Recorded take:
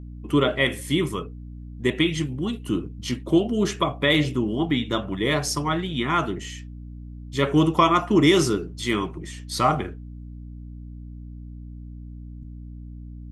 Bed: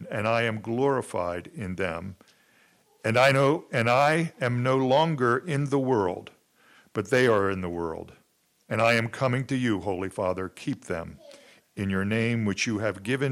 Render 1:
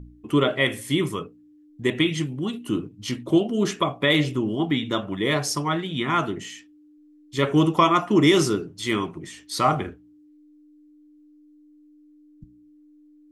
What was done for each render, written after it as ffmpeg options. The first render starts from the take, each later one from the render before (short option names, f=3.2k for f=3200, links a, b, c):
-af "bandreject=f=60:t=h:w=4,bandreject=f=120:t=h:w=4,bandreject=f=180:t=h:w=4,bandreject=f=240:t=h:w=4"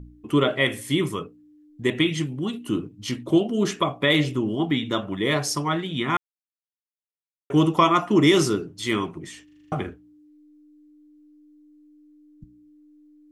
-filter_complex "[0:a]asplit=10[a][b][c][d][e][f][g][h][i][j];[a]atrim=end=6.17,asetpts=PTS-STARTPTS,afade=t=out:st=6.166:d=0.004:c=hsin[k];[b]atrim=start=6.17:end=7.5,asetpts=PTS-STARTPTS,volume=0[l];[c]atrim=start=7.5:end=9.482,asetpts=PTS-STARTPTS,afade=t=in:d=0.004:c=hsin[m];[d]atrim=start=9.438:end=9.482[n];[e]atrim=start=9.438:end=9.482[o];[f]atrim=start=9.438:end=9.482[p];[g]atrim=start=9.438:end=9.482[q];[h]atrim=start=9.438:end=9.482[r];[i]atrim=start=9.438:end=9.482[s];[j]atrim=start=9.718[t];[k][l][m]concat=n=3:v=0:a=1[u];[u][n]acrossfade=d=0.004:c1=hsin:c2=hsin[v];[v][o]acrossfade=d=0.004:c1=hsin:c2=hsin[w];[w][p]acrossfade=d=0.004:c1=hsin:c2=hsin[x];[x][q]acrossfade=d=0.004:c1=hsin:c2=hsin[y];[y][r]acrossfade=d=0.004:c1=hsin:c2=hsin[z];[z][s]acrossfade=d=0.004:c1=hsin:c2=hsin[aa];[aa][t]acrossfade=d=0.004:c1=hsin:c2=hsin"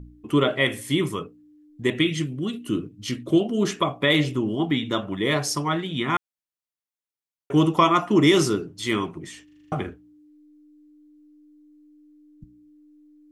-filter_complex "[0:a]asettb=1/sr,asplit=3[a][b][c];[a]atrim=end=1.974[d];[b]atrim=start=1.97:end=3.4,asetpts=PTS-STARTPTS,afade=t=in:d=0.004:c=qsin,afade=t=out:st=1.426:d=0.004:c=qsin,equalizer=f=880:w=4:g=-13[e];[c]atrim=start=3.396[f];[d][e]acrossfade=d=0.004:c1=hsin:c2=qsin[g];[g][f]acrossfade=d=0.004:c1=qsin:c2=hsin"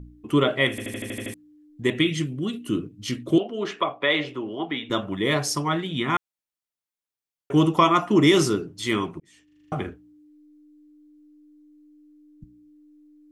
-filter_complex "[0:a]asettb=1/sr,asplit=3[a][b][c];[a]atrim=end=3.384[d];[b]atrim=start=3.38:end=4.9,asetpts=PTS-STARTPTS,afade=t=in:d=0.004:c=qsin,afade=t=out:st=1.516:d=0.004:c=qsin,acrossover=split=360 4200:gain=0.178 1 0.1[e][f][g];[e][f][g]amix=inputs=3:normalize=0[h];[c]atrim=start=4.896[i];[d][h]acrossfade=d=0.004:c1=hsin:c2=qsin[j];[j][i]acrossfade=d=0.004:c1=qsin:c2=hsin,asplit=10[k][l][m][n][o][p][q][r][s][t];[k]atrim=end=0.782[u];[l]atrim=start=0.698:end=0.782[v];[m]atrim=start=0.698:end=0.782[w];[n]atrim=start=0.698:end=0.782[x];[o]atrim=start=0.698:end=0.782[y];[p]atrim=start=0.698:end=0.782[z];[q]atrim=start=0.698:end=0.782[aa];[r]atrim=start=0.698:end=0.782[ab];[s]atrim=start=1.338:end=9.2,asetpts=PTS-STARTPTS,afade=t=out:st=7.858:d=0.004:c=hsin[ac];[t]atrim=start=9.2,asetpts=PTS-STARTPTS,afade=t=in:d=0.65[ad];[u][v]acrossfade=d=0.004:c1=hsin:c2=hsin[ae];[ae][w]acrossfade=d=0.004:c1=hsin:c2=hsin[af];[af][x]acrossfade=d=0.004:c1=hsin:c2=hsin[ag];[ag][y]acrossfade=d=0.004:c1=hsin:c2=hsin[ah];[ah][z]acrossfade=d=0.004:c1=hsin:c2=hsin[ai];[ai][aa]acrossfade=d=0.004:c1=hsin:c2=hsin[aj];[aj][ab]acrossfade=d=0.004:c1=hsin:c2=hsin[ak];[ac][ad]concat=n=2:v=0:a=1[al];[ak][al]acrossfade=d=0.004:c1=hsin:c2=hsin"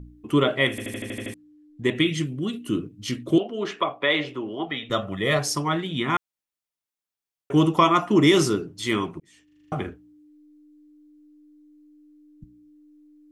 -filter_complex "[0:a]asettb=1/sr,asplit=3[a][b][c];[a]atrim=end=0.994[d];[b]atrim=start=0.99:end=1.96,asetpts=PTS-STARTPTS,afade=t=in:d=0.004:c=qsin,afade=t=out:st=0.966:d=0.004:c=qsin,highshelf=f=9.7k:g=-8.5[e];[c]atrim=start=1.956[f];[d][e]acrossfade=d=0.004:c1=hsin:c2=qsin[g];[g][f]acrossfade=d=0.004:c1=qsin:c2=hsin,asettb=1/sr,asplit=3[h][i][j];[h]atrim=end=4.674[k];[i]atrim=start=4.67:end=5.39,asetpts=PTS-STARTPTS,afade=t=in:d=0.004:c=qsin,afade=t=out:st=0.716:d=0.004:c=qsin,aecho=1:1:1.6:0.51,atrim=end_sample=31752[l];[j]atrim=start=5.386[m];[k][l]acrossfade=d=0.004:c1=hsin:c2=qsin[n];[n][m]acrossfade=d=0.004:c1=qsin:c2=hsin"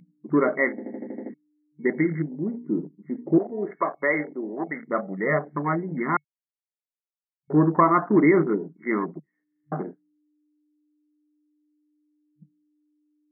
-af "afwtdn=0.0282,afftfilt=real='re*between(b*sr/4096,150,2200)':imag='im*between(b*sr/4096,150,2200)':win_size=4096:overlap=0.75"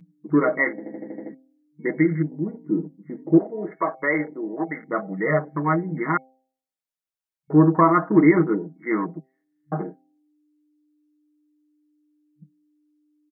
-af "aecho=1:1:6.3:0.64,bandreject=f=130.9:t=h:w=4,bandreject=f=261.8:t=h:w=4,bandreject=f=392.7:t=h:w=4,bandreject=f=523.6:t=h:w=4,bandreject=f=654.5:t=h:w=4,bandreject=f=785.4:t=h:w=4"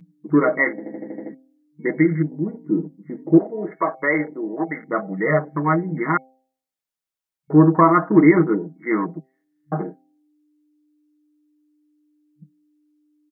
-af "volume=2.5dB"